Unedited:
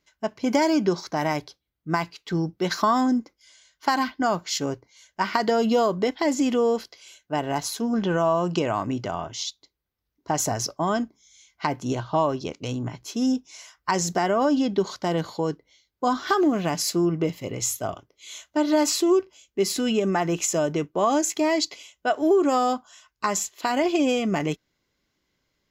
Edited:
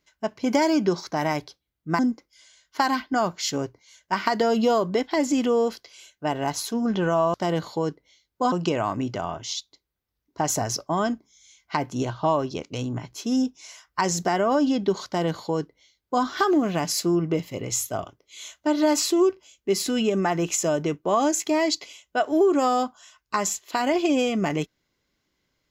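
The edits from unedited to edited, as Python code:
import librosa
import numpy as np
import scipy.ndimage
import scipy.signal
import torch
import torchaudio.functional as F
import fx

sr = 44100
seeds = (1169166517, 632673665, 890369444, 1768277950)

y = fx.edit(x, sr, fx.cut(start_s=1.99, length_s=1.08),
    fx.duplicate(start_s=14.96, length_s=1.18, to_s=8.42), tone=tone)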